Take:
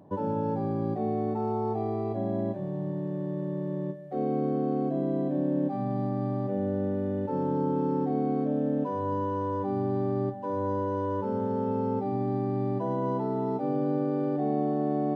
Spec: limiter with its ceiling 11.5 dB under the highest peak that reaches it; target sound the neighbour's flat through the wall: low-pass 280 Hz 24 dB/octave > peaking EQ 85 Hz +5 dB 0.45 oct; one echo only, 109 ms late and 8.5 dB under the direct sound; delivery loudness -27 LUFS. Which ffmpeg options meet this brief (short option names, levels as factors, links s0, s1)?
-af "alimiter=level_in=1.5:limit=0.0631:level=0:latency=1,volume=0.668,lowpass=f=280:w=0.5412,lowpass=f=280:w=1.3066,equalizer=f=85:t=o:w=0.45:g=5,aecho=1:1:109:0.376,volume=3.55"